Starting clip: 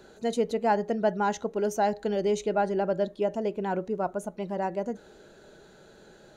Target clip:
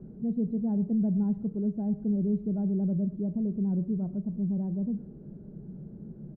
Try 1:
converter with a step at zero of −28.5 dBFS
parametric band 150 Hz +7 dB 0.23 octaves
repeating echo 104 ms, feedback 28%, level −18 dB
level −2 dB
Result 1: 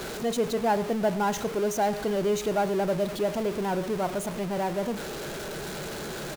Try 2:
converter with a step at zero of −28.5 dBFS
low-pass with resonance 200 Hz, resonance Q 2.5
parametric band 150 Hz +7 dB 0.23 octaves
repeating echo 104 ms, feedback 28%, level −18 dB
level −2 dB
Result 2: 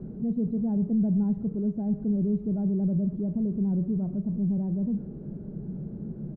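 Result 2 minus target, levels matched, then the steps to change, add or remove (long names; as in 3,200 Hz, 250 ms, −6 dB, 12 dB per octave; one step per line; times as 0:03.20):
converter with a step at zero: distortion +7 dB
change: converter with a step at zero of −37 dBFS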